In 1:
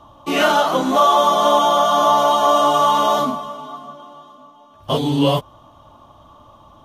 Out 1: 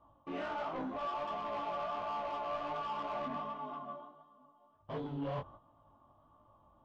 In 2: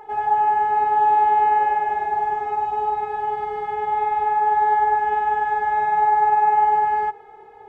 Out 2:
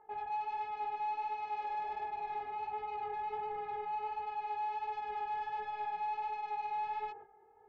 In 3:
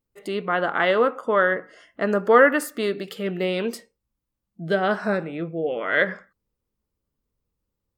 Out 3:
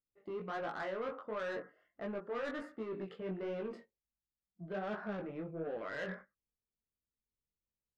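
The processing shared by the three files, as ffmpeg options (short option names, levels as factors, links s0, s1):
-af "agate=range=0.316:threshold=0.0126:ratio=16:detection=peak,lowpass=1700,areverse,acompressor=threshold=0.0562:ratio=5,areverse,asoftclip=type=tanh:threshold=0.0501,flanger=delay=18:depth=4.5:speed=1.4,volume=0.531"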